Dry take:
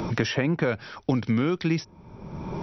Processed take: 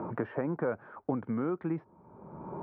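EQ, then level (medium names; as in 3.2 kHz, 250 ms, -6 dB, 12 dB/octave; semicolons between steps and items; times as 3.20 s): high-pass 380 Hz 6 dB/octave; low-pass 1.3 kHz 24 dB/octave; -3.0 dB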